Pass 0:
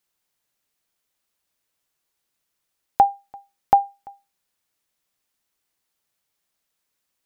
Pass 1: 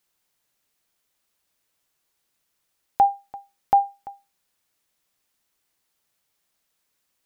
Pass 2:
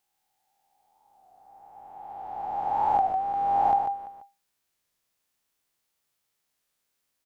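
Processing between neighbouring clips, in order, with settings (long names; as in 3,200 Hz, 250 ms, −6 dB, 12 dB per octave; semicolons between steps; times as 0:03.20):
brickwall limiter −12.5 dBFS, peak gain reduction 8 dB; level +3 dB
peak hold with a rise ahead of every peak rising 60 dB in 2.70 s; single-tap delay 145 ms −6.5 dB; wow of a warped record 33 1/3 rpm, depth 100 cents; level −8 dB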